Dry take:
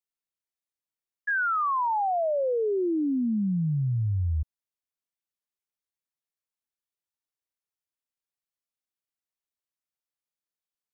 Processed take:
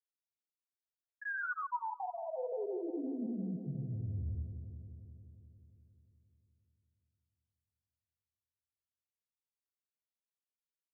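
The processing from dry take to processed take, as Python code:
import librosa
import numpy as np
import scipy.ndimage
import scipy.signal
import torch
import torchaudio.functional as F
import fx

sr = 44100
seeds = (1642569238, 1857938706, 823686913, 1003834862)

y = fx.spec_dropout(x, sr, seeds[0], share_pct=26)
y = fx.comb_fb(y, sr, f0_hz=490.0, decay_s=0.4, harmonics='all', damping=0.0, mix_pct=70)
y = fx.granulator(y, sr, seeds[1], grain_ms=100.0, per_s=20.0, spray_ms=100.0, spread_st=0)
y = fx.echo_bbd(y, sr, ms=176, stages=1024, feedback_pct=73, wet_db=-9.0)
y = y * 10.0 ** (-1.0 / 20.0)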